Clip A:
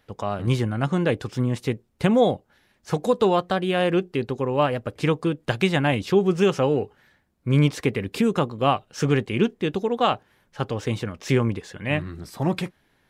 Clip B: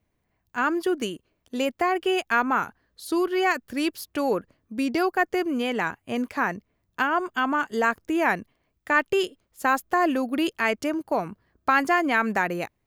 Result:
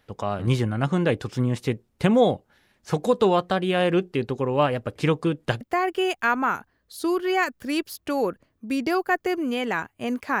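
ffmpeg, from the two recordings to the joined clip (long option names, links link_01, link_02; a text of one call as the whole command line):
ffmpeg -i cue0.wav -i cue1.wav -filter_complex "[0:a]apad=whole_dur=10.4,atrim=end=10.4,atrim=end=5.612[link_01];[1:a]atrim=start=1.688:end=6.48[link_02];[link_01][link_02]acrossfade=duration=0.004:curve1=hsin:curve2=hsin" out.wav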